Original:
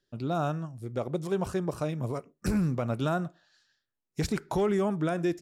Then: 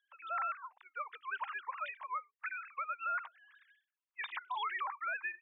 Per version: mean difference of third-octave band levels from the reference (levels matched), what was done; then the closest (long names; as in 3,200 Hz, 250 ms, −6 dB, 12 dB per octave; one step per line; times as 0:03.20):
19.5 dB: three sine waves on the formant tracks
elliptic high-pass filter 1,000 Hz, stop band 80 dB
brickwall limiter −36.5 dBFS, peak gain reduction 11 dB
level +6.5 dB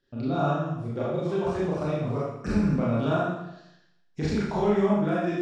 8.0 dB: in parallel at +3 dB: downward compressor, threshold −42 dBFS, peak gain reduction 17 dB
on the sum: high-frequency loss of the air 130 metres
four-comb reverb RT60 0.84 s, combs from 27 ms, DRR −7.5 dB
level −5.5 dB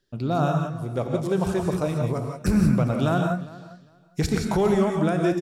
5.5 dB: low-shelf EQ 140 Hz +4 dB
on a send: repeating echo 404 ms, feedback 18%, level −19.5 dB
on the sum: reverb whose tail is shaped and stops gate 200 ms rising, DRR 2.5 dB
level +4 dB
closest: third